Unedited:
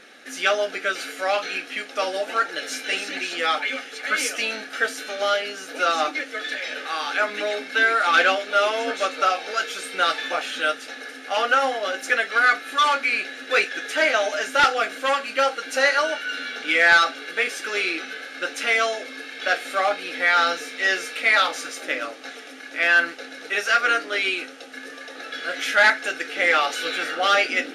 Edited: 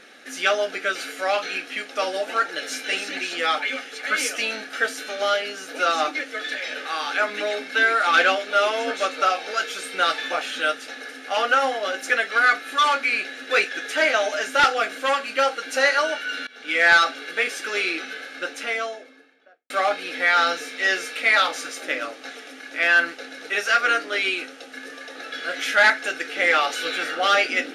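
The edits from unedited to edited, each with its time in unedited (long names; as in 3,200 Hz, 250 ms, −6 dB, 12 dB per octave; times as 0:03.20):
0:16.47–0:16.87: fade in, from −23.5 dB
0:18.14–0:19.70: fade out and dull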